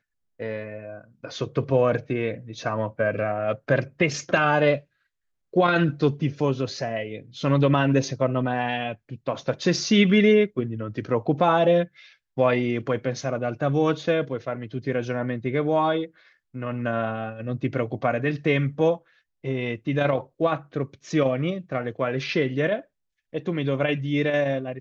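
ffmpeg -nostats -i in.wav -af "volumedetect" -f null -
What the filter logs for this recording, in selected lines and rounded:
mean_volume: -24.4 dB
max_volume: -7.7 dB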